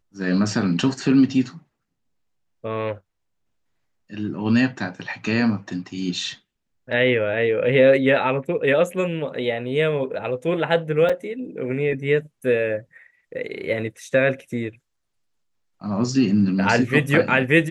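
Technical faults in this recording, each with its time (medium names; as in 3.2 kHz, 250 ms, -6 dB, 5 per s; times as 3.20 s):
11.09–11.10 s: dropout 5.1 ms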